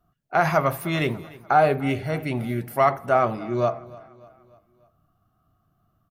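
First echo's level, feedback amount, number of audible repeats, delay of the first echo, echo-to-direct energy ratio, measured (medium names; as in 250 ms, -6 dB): -21.0 dB, 51%, 3, 296 ms, -19.5 dB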